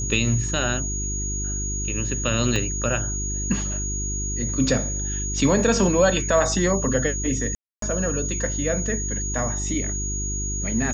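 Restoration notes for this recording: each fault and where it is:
mains hum 50 Hz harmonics 8 −29 dBFS
whistle 6,700 Hz −28 dBFS
0:02.56: click −11 dBFS
0:07.55–0:07.82: drop-out 273 ms

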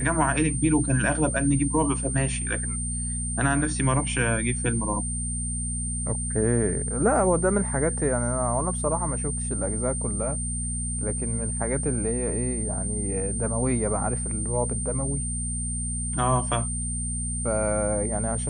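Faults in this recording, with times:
mains hum 60 Hz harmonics 4 −31 dBFS
whistle 8,900 Hz −30 dBFS

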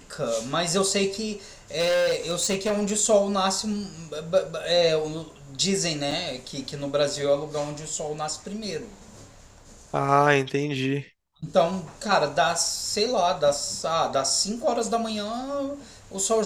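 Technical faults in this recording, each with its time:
0:01.78–0:02.91: clipping −20 dBFS
0:06.11: drop-out 4.5 ms

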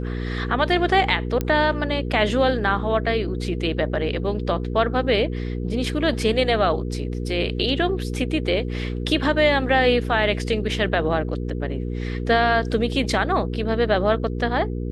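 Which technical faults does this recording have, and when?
mains hum 60 Hz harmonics 8 −27 dBFS
0:01.41: click −10 dBFS

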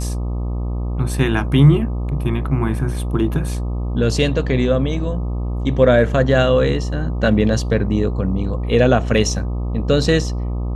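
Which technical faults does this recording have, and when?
mains buzz 60 Hz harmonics 21 −22 dBFS

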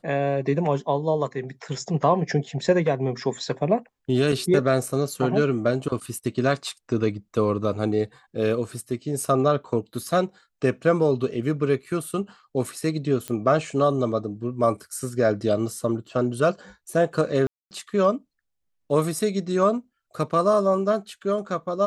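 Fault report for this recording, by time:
0:13.28: click −15 dBFS
0:17.47–0:17.71: drop-out 239 ms

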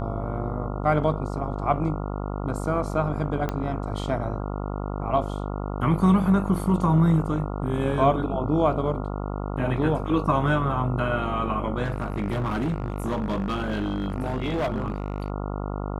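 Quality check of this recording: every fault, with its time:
mains buzz 50 Hz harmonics 28 −30 dBFS
0:03.49: click −14 dBFS
0:11.84–0:15.30: clipping −22 dBFS

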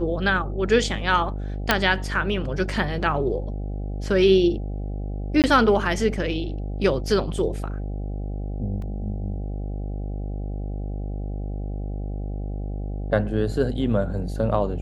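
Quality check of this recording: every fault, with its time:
mains buzz 50 Hz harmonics 16 −29 dBFS
0:01.71: click −1 dBFS
0:05.42–0:05.44: drop-out 18 ms
0:08.82: drop-out 2.5 ms

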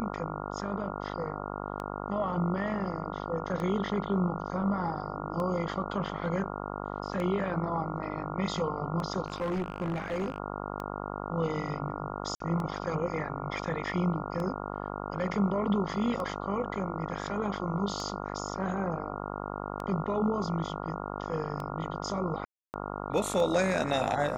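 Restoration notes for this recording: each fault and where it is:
mains buzz 50 Hz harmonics 28 −37 dBFS
scratch tick 33 1/3 rpm −23 dBFS
0:09.26–0:10.38: clipping −27.5 dBFS
0:12.35–0:12.40: drop-out 53 ms
0:22.45–0:22.74: drop-out 289 ms

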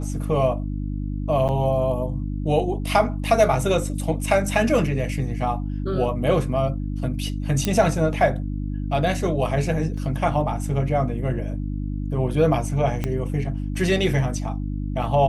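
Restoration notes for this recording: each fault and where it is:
mains hum 50 Hz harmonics 6 −27 dBFS
0:01.48–0:01.49: drop-out 8.5 ms
0:07.65: click −8 dBFS
0:09.97: drop-out 5 ms
0:13.04: click −12 dBFS

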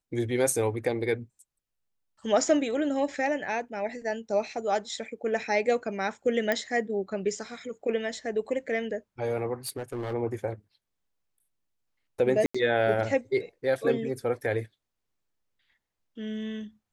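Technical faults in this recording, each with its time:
0:06.52: click −13 dBFS
0:09.66–0:10.14: clipping −29.5 dBFS
0:12.46–0:12.54: drop-out 85 ms

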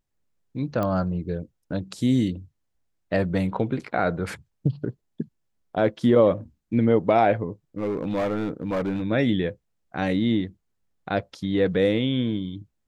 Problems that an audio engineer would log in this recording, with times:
0:00.83: click −15 dBFS
0:07.78–0:09.02: clipping −21.5 dBFS

